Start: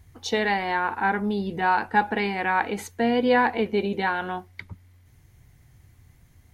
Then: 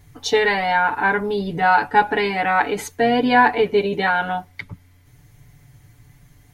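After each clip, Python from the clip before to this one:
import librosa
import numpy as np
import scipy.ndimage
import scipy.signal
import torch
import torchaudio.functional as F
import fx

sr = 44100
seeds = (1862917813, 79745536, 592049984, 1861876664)

y = x + 0.97 * np.pad(x, (int(6.9 * sr / 1000.0), 0))[:len(x)]
y = y * 10.0 ** (3.5 / 20.0)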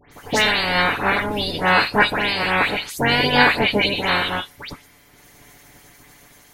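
y = fx.spec_clip(x, sr, under_db=24)
y = fx.dispersion(y, sr, late='highs', ms=122.0, hz=2700.0)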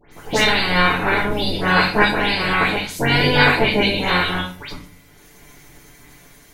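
y = fx.room_shoebox(x, sr, seeds[0], volume_m3=36.0, walls='mixed', distance_m=0.7)
y = y * 10.0 ** (-2.5 / 20.0)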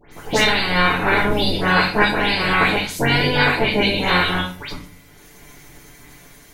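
y = fx.rider(x, sr, range_db=4, speed_s=0.5)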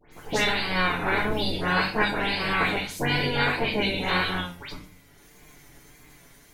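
y = fx.vibrato(x, sr, rate_hz=1.7, depth_cents=57.0)
y = y * 10.0 ** (-7.5 / 20.0)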